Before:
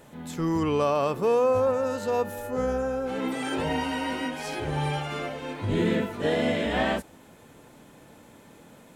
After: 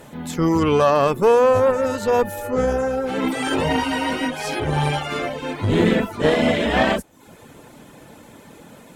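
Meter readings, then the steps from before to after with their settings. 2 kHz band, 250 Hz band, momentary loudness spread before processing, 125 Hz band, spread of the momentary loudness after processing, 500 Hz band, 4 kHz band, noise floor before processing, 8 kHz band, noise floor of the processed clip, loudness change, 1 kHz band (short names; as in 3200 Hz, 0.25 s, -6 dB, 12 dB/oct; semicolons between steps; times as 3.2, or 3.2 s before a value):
+8.0 dB, +7.0 dB, 8 LU, +7.0 dB, 8 LU, +7.0 dB, +7.5 dB, -52 dBFS, +8.0 dB, -46 dBFS, +7.0 dB, +8.0 dB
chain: added harmonics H 4 -19 dB, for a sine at -12.5 dBFS; reverb removal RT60 0.53 s; gain +8.5 dB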